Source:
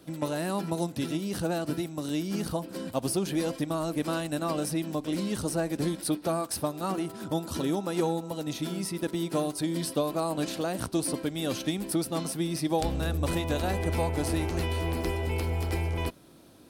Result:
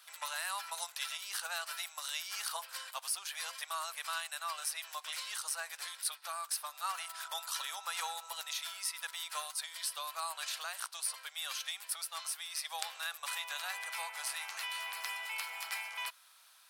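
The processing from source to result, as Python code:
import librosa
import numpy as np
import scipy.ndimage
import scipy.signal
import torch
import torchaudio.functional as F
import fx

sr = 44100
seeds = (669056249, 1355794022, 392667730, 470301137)

y = scipy.signal.sosfilt(scipy.signal.cheby2(4, 60, 320.0, 'highpass', fs=sr, output='sos'), x)
y = fx.rider(y, sr, range_db=10, speed_s=0.5)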